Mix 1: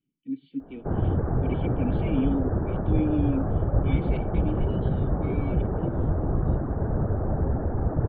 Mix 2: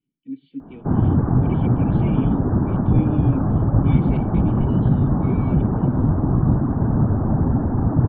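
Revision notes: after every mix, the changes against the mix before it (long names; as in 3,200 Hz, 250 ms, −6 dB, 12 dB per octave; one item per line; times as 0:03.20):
background: add graphic EQ with 10 bands 125 Hz +8 dB, 250 Hz +12 dB, 500 Hz −5 dB, 1,000 Hz +9 dB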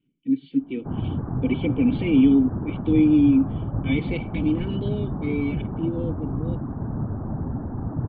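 speech +10.0 dB
background −10.0 dB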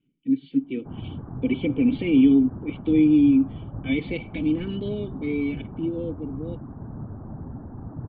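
background −8.0 dB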